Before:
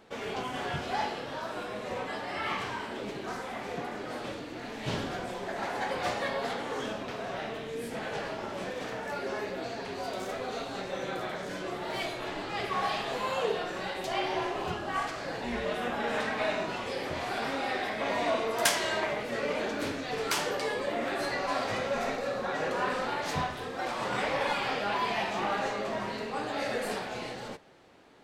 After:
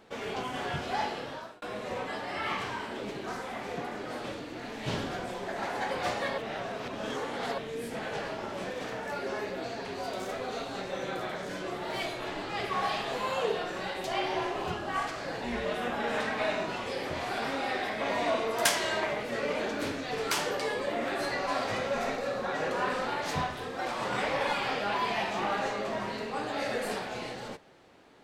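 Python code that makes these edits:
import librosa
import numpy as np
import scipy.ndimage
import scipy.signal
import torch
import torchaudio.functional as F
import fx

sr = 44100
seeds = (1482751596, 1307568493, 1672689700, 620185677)

y = fx.edit(x, sr, fx.fade_out_span(start_s=1.25, length_s=0.37),
    fx.reverse_span(start_s=6.38, length_s=1.2), tone=tone)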